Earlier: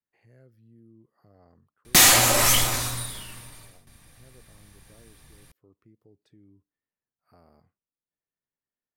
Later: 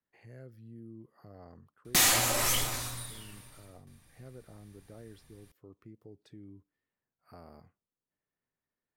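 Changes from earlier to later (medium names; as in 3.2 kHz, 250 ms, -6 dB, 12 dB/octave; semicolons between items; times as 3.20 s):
speech +6.0 dB; background -9.0 dB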